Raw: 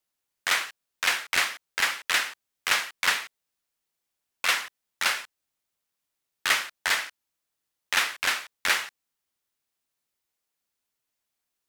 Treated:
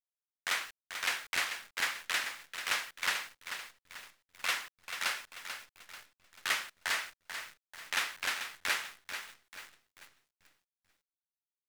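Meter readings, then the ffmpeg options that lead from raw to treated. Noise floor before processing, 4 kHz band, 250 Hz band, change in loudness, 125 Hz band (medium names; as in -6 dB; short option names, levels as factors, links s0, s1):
-83 dBFS, -8.0 dB, -7.5 dB, -9.0 dB, no reading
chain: -af "aecho=1:1:439|878|1317|1756|2195:0.355|0.145|0.0596|0.0245|0.01,acrusher=bits=8:dc=4:mix=0:aa=0.000001,volume=0.376"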